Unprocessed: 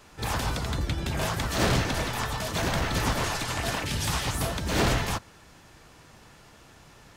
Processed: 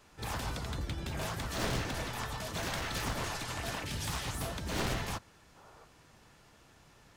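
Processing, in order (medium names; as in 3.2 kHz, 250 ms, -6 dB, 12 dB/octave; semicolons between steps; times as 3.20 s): one-sided wavefolder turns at -22.5 dBFS; 2.62–3.05 s: tilt shelf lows -3 dB; 5.57–5.84 s: time-frequency box 380–1500 Hz +9 dB; trim -8 dB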